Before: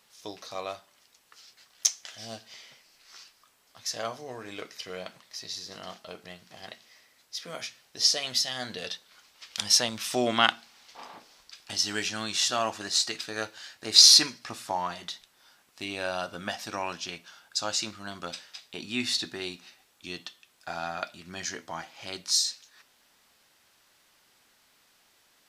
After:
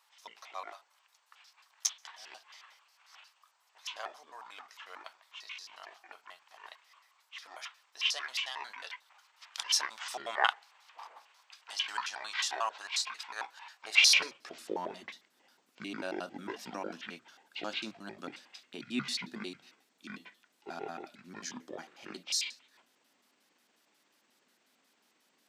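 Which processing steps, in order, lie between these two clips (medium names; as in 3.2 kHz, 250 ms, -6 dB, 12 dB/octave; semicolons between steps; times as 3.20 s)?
pitch shift switched off and on -10 st, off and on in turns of 90 ms; high-pass sweep 940 Hz -> 240 Hz, 13.73–14.78 s; trim -7.5 dB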